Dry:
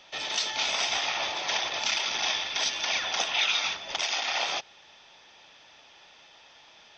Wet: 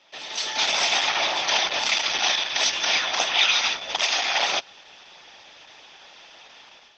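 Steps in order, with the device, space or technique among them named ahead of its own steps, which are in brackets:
video call (high-pass filter 160 Hz 12 dB per octave; automatic gain control gain up to 11 dB; level −3 dB; Opus 12 kbit/s 48,000 Hz)

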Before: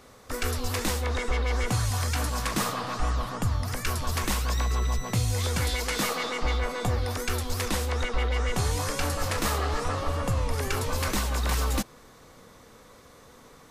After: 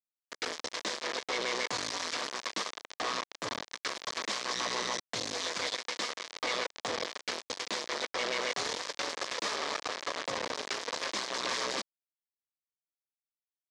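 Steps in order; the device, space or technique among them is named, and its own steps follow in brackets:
hand-held game console (bit reduction 4 bits; loudspeaker in its box 460–5,900 Hz, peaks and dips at 790 Hz −6 dB, 1,400 Hz −6 dB, 2,700 Hz −5 dB)
level −3.5 dB

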